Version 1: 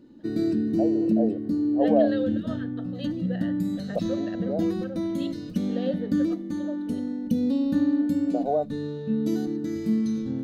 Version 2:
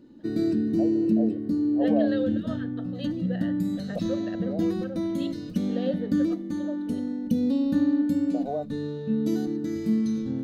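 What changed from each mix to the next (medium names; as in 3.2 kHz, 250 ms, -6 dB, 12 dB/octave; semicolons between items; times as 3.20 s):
first voice -6.0 dB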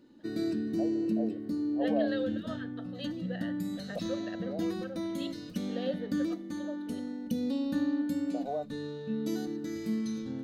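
master: add bass shelf 490 Hz -10 dB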